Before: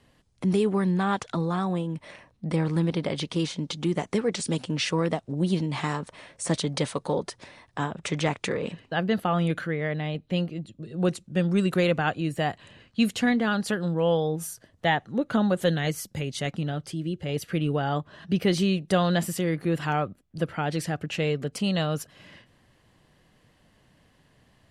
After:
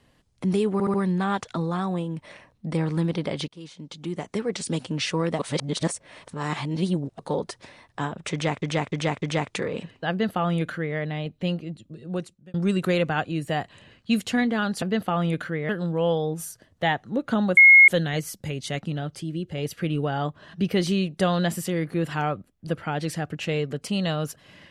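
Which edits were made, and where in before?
0:00.73: stutter 0.07 s, 4 plays
0:03.27–0:04.51: fade in, from −22 dB
0:05.18–0:06.98: reverse
0:08.11–0:08.41: repeat, 4 plays
0:08.99–0:09.86: duplicate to 0:13.71
0:10.40–0:11.43: fade out equal-power
0:15.59: insert tone 2,160 Hz −8 dBFS 0.31 s

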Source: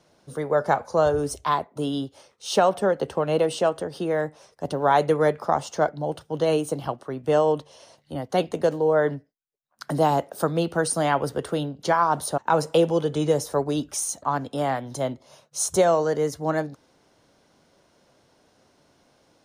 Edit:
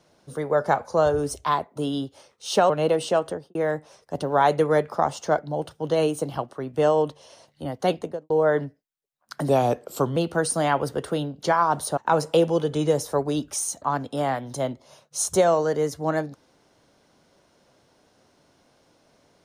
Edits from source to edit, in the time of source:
0:02.70–0:03.20: remove
0:03.80–0:04.05: fade out and dull
0:08.41–0:08.80: fade out and dull
0:09.99–0:10.57: play speed 86%

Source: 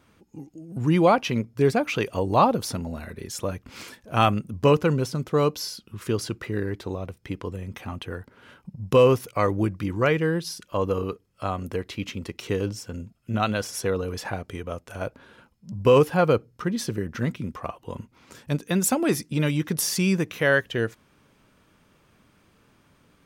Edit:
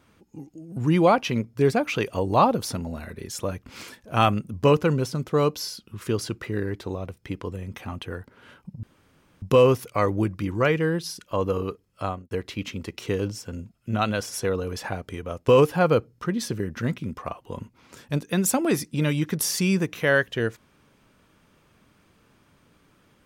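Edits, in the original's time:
0:08.83: splice in room tone 0.59 s
0:11.46–0:11.72: fade out and dull
0:14.89–0:15.86: remove

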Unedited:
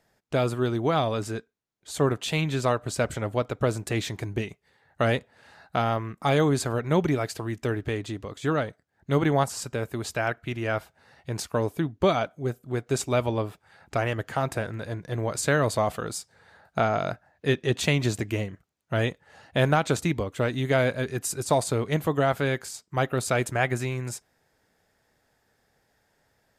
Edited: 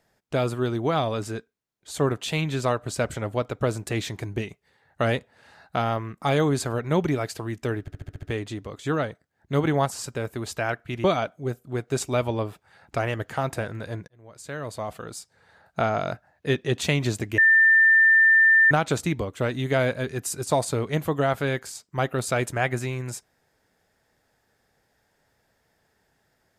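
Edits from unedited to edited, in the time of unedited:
0:07.81: stutter 0.07 s, 7 plays
0:10.62–0:12.03: remove
0:15.07–0:16.87: fade in
0:18.37–0:19.70: beep over 1,790 Hz −13 dBFS

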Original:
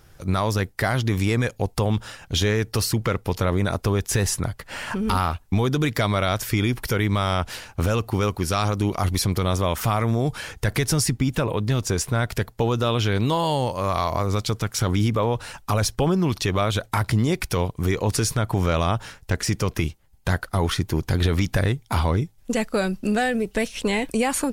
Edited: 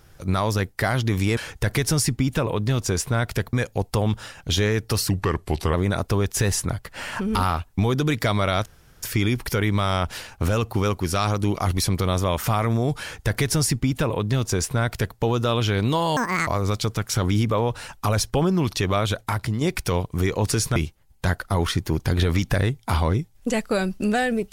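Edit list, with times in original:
0:02.94–0:03.48: play speed 85%
0:06.40: splice in room tone 0.37 s
0:10.38–0:12.54: duplicate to 0:01.37
0:13.54–0:14.12: play speed 190%
0:16.73–0:17.26: fade out, to −6.5 dB
0:18.41–0:19.79: remove

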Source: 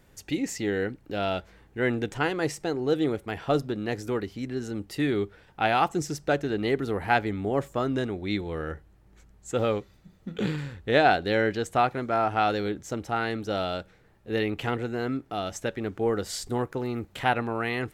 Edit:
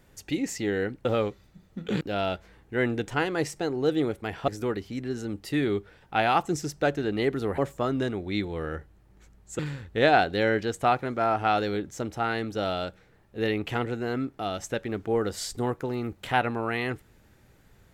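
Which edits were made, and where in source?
0:03.52–0:03.94: remove
0:07.04–0:07.54: remove
0:09.55–0:10.51: move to 0:01.05

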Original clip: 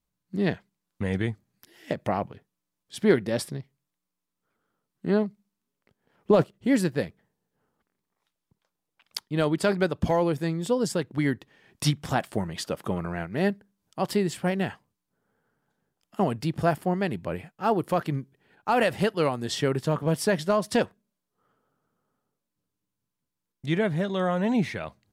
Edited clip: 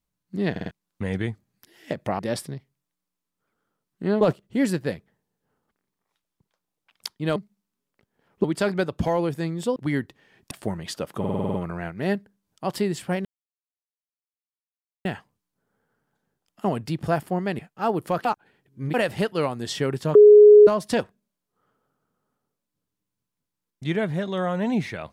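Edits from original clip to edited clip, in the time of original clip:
0:00.51: stutter in place 0.05 s, 4 plays
0:02.19–0:03.22: remove
0:05.24–0:06.32: move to 0:09.47
0:10.79–0:11.08: remove
0:11.83–0:12.21: remove
0:12.89: stutter 0.05 s, 8 plays
0:14.60: splice in silence 1.80 s
0:17.14–0:17.41: remove
0:18.07–0:18.76: reverse
0:19.97–0:20.49: beep over 418 Hz −6.5 dBFS

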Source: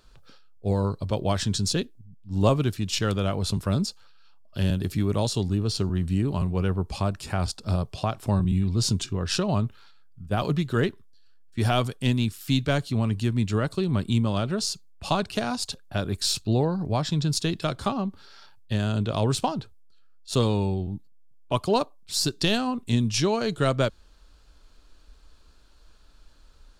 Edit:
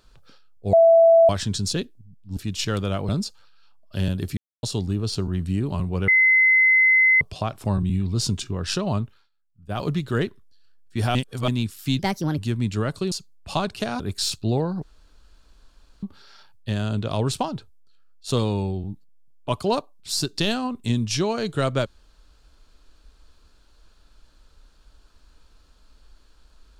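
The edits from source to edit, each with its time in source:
0:00.73–0:01.29: beep over 663 Hz −10 dBFS
0:02.37–0:02.71: remove
0:03.43–0:03.71: remove
0:04.99–0:05.25: silence
0:06.70–0:07.83: beep over 2,050 Hz −13 dBFS
0:09.60–0:10.47: duck −19.5 dB, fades 0.30 s
0:11.77–0:12.10: reverse
0:12.61–0:13.14: play speed 137%
0:13.88–0:14.67: remove
0:15.55–0:16.03: remove
0:16.86–0:18.06: fill with room tone

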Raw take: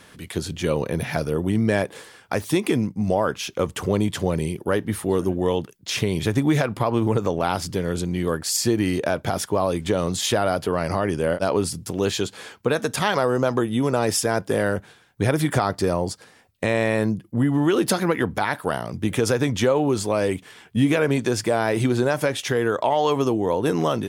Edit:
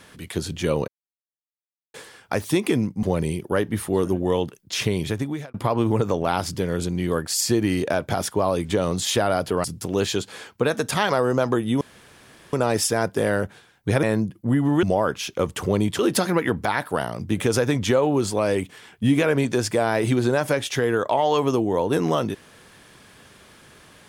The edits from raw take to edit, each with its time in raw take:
0:00.88–0:01.94: silence
0:03.03–0:04.19: move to 0:17.72
0:06.08–0:06.70: fade out
0:10.80–0:11.69: remove
0:13.86: splice in room tone 0.72 s
0:15.36–0:16.92: remove

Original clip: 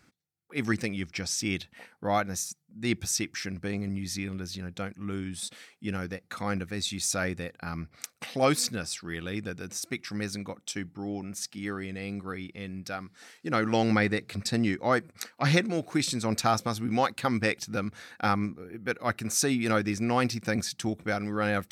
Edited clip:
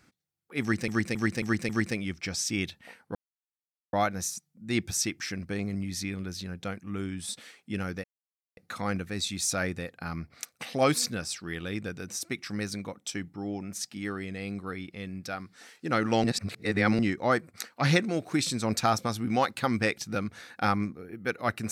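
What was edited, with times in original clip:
0:00.61–0:00.88: repeat, 5 plays
0:02.07: splice in silence 0.78 s
0:06.18: splice in silence 0.53 s
0:13.85–0:14.60: reverse

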